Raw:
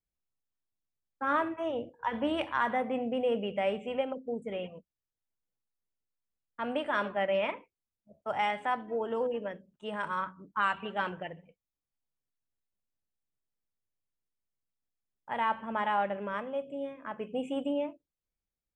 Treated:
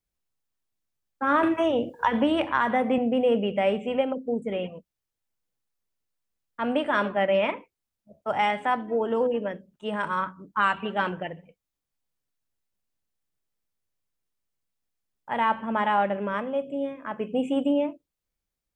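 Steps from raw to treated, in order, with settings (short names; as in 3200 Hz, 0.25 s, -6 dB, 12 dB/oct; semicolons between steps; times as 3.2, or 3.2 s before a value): dynamic EQ 250 Hz, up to +4 dB, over -45 dBFS, Q 1; 1.43–2.98 three-band squash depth 100%; gain +5.5 dB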